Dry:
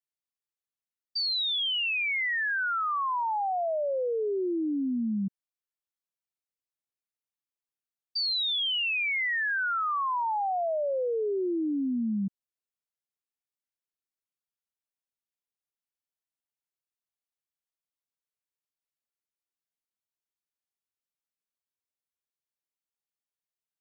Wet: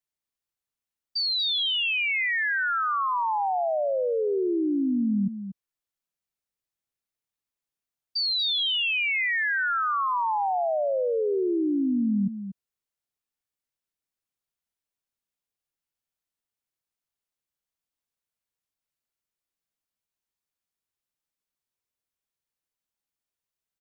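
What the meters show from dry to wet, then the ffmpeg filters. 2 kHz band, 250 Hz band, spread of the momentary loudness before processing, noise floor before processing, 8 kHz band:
+3.0 dB, +4.5 dB, 4 LU, under -85 dBFS, n/a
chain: -filter_complex "[0:a]lowshelf=f=150:g=6,asplit=2[a][b];[b]aecho=0:1:237:0.299[c];[a][c]amix=inputs=2:normalize=0,volume=2.5dB"

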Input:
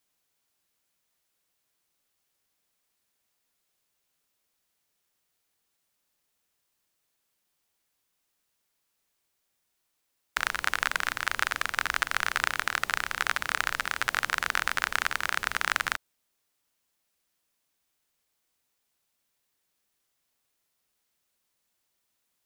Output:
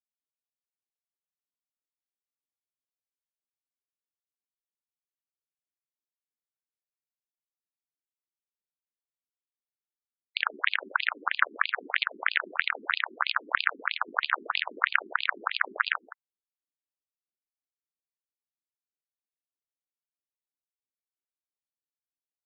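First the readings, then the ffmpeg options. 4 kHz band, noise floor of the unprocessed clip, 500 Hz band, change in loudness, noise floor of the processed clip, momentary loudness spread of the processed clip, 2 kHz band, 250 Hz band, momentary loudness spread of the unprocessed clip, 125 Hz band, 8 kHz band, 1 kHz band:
+0.5 dB, -78 dBFS, -0.5 dB, 0.0 dB, under -85 dBFS, 3 LU, 0.0 dB, -1.0 dB, 2 LU, under -20 dB, under -40 dB, 0.0 dB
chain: -filter_complex "[0:a]anlmdn=0.01,asplit=2[a][b];[b]adelay=169.1,volume=-13dB,highshelf=f=4k:g=-3.8[c];[a][c]amix=inputs=2:normalize=0,afftfilt=real='re*between(b*sr/1024,290*pow(3500/290,0.5+0.5*sin(2*PI*3.1*pts/sr))/1.41,290*pow(3500/290,0.5+0.5*sin(2*PI*3.1*pts/sr))*1.41)':imag='im*between(b*sr/1024,290*pow(3500/290,0.5+0.5*sin(2*PI*3.1*pts/sr))/1.41,290*pow(3500/290,0.5+0.5*sin(2*PI*3.1*pts/sr))*1.41)':win_size=1024:overlap=0.75,volume=7dB"

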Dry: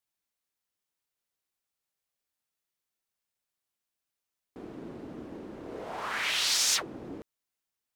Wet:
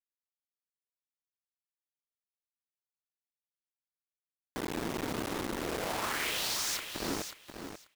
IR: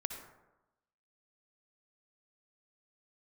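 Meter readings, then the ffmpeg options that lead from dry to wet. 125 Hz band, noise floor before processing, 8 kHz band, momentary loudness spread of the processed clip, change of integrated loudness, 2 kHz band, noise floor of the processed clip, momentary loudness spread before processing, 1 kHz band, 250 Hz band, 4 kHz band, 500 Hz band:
+6.0 dB, under -85 dBFS, -6.0 dB, 14 LU, -7.0 dB, -2.5 dB, under -85 dBFS, 20 LU, +1.5 dB, +4.5 dB, -6.0 dB, +4.0 dB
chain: -af "acompressor=threshold=-40dB:ratio=10,acrusher=bits=6:mix=0:aa=0.000001,aecho=1:1:537|1074|1611:0.376|0.0677|0.0122,volume=7.5dB"

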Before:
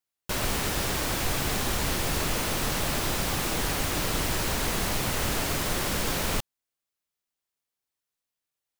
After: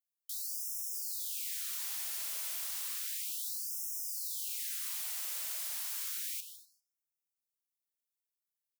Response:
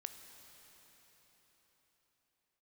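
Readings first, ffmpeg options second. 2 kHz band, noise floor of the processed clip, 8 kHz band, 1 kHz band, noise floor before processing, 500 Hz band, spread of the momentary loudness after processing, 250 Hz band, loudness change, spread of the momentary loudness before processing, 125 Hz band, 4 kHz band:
-20.0 dB, under -85 dBFS, -6.5 dB, -26.5 dB, under -85 dBFS, under -35 dB, 1 LU, under -40 dB, -8.0 dB, 0 LU, under -40 dB, -13.0 dB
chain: -filter_complex "[0:a]aderivative,asplit=2[a][b];[b]aeval=exprs='(mod(15.8*val(0)+1,2)-1)/15.8':c=same,volume=-8.5dB[c];[a][c]amix=inputs=2:normalize=0,asplit=2[d][e];[e]adelay=153,lowpass=f=3.3k:p=1,volume=-7dB,asplit=2[f][g];[g]adelay=153,lowpass=f=3.3k:p=1,volume=0.24,asplit=2[h][i];[i]adelay=153,lowpass=f=3.3k:p=1,volume=0.24[j];[d][f][h][j]amix=inputs=4:normalize=0[k];[1:a]atrim=start_sample=2205,afade=t=out:st=0.3:d=0.01,atrim=end_sample=13671[l];[k][l]afir=irnorm=-1:irlink=0,afftfilt=real='re*gte(b*sr/1024,440*pow(5200/440,0.5+0.5*sin(2*PI*0.32*pts/sr)))':imag='im*gte(b*sr/1024,440*pow(5200/440,0.5+0.5*sin(2*PI*0.32*pts/sr)))':win_size=1024:overlap=0.75,volume=-5.5dB"

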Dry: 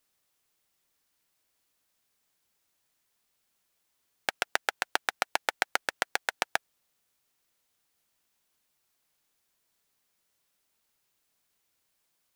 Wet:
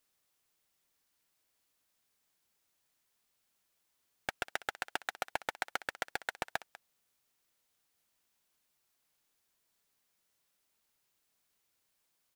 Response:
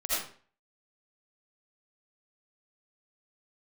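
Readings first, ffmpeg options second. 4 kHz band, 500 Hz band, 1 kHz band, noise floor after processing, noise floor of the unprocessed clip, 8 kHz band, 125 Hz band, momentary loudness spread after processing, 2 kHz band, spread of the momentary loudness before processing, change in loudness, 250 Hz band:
-9.0 dB, -6.5 dB, -7.0 dB, -79 dBFS, -77 dBFS, -10.0 dB, +0.5 dB, 5 LU, -7.5 dB, 4 LU, -8.0 dB, -4.5 dB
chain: -af "aecho=1:1:196:0.075,asoftclip=type=tanh:threshold=-16.5dB,volume=-2.5dB"

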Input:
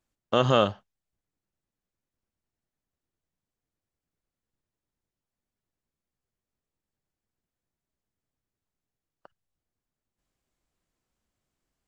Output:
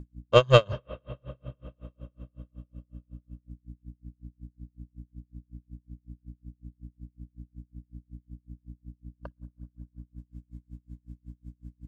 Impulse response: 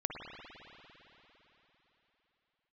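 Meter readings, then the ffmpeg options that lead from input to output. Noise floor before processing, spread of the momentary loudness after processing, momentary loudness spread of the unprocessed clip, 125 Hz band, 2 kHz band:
under -85 dBFS, 24 LU, 6 LU, +5.5 dB, +4.0 dB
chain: -filter_complex "[0:a]equalizer=f=130:t=o:w=0.77:g=8.5,aecho=1:1:1.9:0.73,asplit=2[a][b];[b]aeval=exprs='0.531*sin(PI/2*2*val(0)/0.531)':c=same,volume=-10.5dB[c];[a][c]amix=inputs=2:normalize=0,aeval=exprs='val(0)+0.0126*(sin(2*PI*60*n/s)+sin(2*PI*2*60*n/s)/2+sin(2*PI*3*60*n/s)/3+sin(2*PI*4*60*n/s)/4+sin(2*PI*5*60*n/s)/5)':c=same,asplit=2[d][e];[1:a]atrim=start_sample=2205,asetrate=40131,aresample=44100[f];[e][f]afir=irnorm=-1:irlink=0,volume=-20.5dB[g];[d][g]amix=inputs=2:normalize=0,aeval=exprs='val(0)*pow(10,-36*(0.5-0.5*cos(2*PI*5.4*n/s))/20)':c=same"

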